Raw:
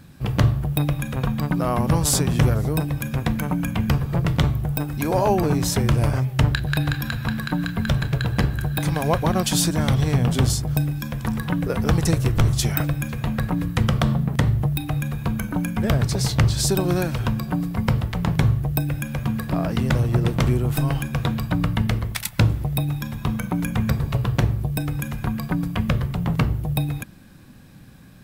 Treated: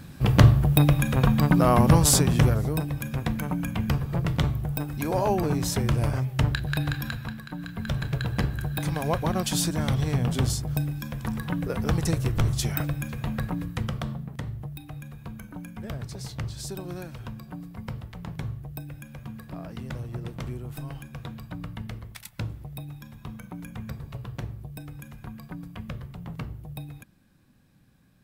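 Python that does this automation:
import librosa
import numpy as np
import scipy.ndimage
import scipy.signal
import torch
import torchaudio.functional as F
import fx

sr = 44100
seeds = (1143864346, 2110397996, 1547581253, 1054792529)

y = fx.gain(x, sr, db=fx.line((1.82, 3.0), (2.82, -5.0), (7.09, -5.0), (7.44, -14.0), (8.08, -5.5), (13.41, -5.5), (14.35, -15.0)))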